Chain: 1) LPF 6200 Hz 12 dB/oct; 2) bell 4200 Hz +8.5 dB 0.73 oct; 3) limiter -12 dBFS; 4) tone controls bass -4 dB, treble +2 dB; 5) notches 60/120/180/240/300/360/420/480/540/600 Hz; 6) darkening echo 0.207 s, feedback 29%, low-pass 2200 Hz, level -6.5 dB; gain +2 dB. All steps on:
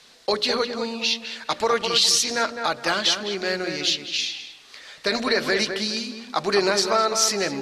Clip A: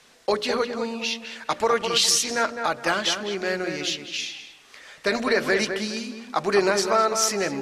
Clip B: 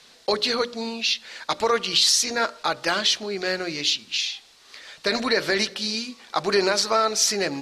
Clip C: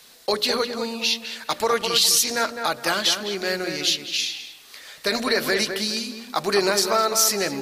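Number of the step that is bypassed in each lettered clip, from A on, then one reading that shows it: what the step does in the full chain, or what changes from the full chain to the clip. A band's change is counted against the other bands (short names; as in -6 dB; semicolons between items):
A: 2, 4 kHz band -4.5 dB; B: 6, echo-to-direct -8.0 dB to none; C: 1, 8 kHz band +2.5 dB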